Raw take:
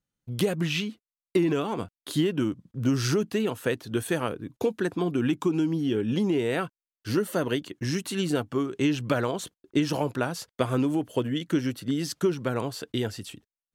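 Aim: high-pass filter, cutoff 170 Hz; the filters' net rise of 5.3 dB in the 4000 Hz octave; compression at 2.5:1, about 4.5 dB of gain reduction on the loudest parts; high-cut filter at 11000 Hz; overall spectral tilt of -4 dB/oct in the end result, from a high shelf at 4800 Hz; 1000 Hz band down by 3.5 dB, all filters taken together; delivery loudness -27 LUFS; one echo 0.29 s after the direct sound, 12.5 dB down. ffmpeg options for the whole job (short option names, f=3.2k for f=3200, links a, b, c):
-af "highpass=170,lowpass=11k,equalizer=f=1k:t=o:g=-5.5,equalizer=f=4k:t=o:g=4,highshelf=f=4.8k:g=7.5,acompressor=threshold=-26dB:ratio=2.5,aecho=1:1:290:0.237,volume=3.5dB"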